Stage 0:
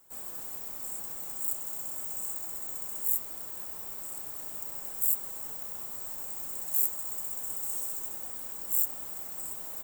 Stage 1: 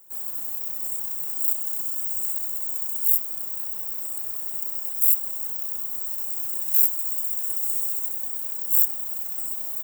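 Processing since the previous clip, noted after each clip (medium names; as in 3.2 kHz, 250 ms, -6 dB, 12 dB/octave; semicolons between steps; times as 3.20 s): treble shelf 11 kHz +10.5 dB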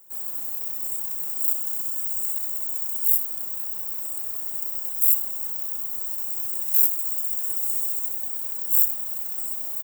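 delay 82 ms -12 dB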